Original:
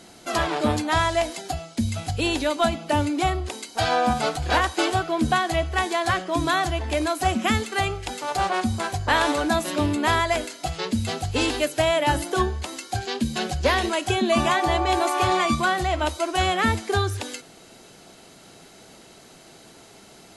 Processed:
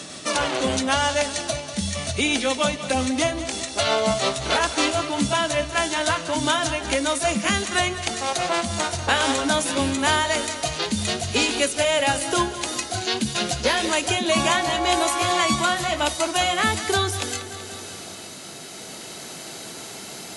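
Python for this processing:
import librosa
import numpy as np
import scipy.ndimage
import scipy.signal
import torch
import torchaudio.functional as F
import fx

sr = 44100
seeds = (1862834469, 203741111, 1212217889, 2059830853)

p1 = fx.pitch_glide(x, sr, semitones=-2.5, runs='ending unshifted')
p2 = scipy.signal.sosfilt(scipy.signal.butter(2, 91.0, 'highpass', fs=sr, output='sos'), p1)
p3 = fx.high_shelf(p2, sr, hz=2700.0, db=10.5)
p4 = p3 + fx.echo_feedback(p3, sr, ms=190, feedback_pct=57, wet_db=-14, dry=0)
y = fx.band_squash(p4, sr, depth_pct=40)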